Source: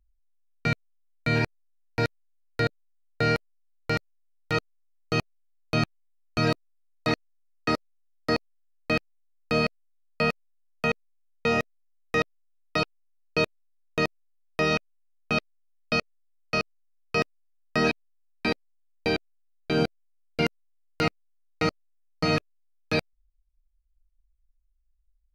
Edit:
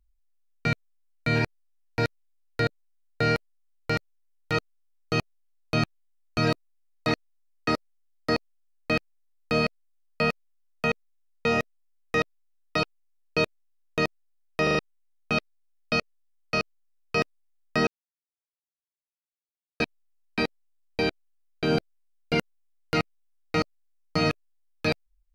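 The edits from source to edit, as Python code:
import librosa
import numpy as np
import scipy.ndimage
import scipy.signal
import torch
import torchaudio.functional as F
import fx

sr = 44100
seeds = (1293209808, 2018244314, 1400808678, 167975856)

y = fx.edit(x, sr, fx.stutter_over(start_s=14.63, slice_s=0.04, count=4),
    fx.insert_silence(at_s=17.87, length_s=1.93), tone=tone)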